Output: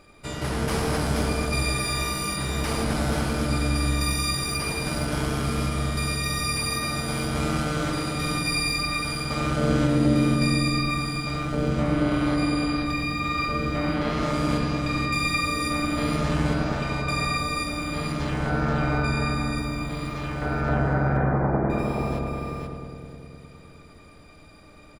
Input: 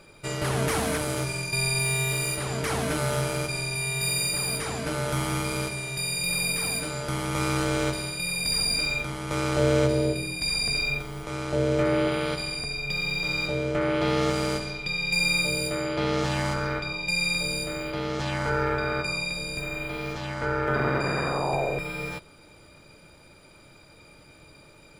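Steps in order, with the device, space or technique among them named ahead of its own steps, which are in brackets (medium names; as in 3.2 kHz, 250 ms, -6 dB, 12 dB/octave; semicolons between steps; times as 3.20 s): 8.80–10.28 s: de-hum 49.54 Hz, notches 2; 20.69–21.70 s: steep low-pass 2.1 kHz 72 dB/octave; feedback delay 482 ms, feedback 15%, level -5 dB; octave pedal (harmony voices -12 st 0 dB); filtered feedback delay 102 ms, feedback 83%, low-pass 1.7 kHz, level -3.5 dB; trim -4.5 dB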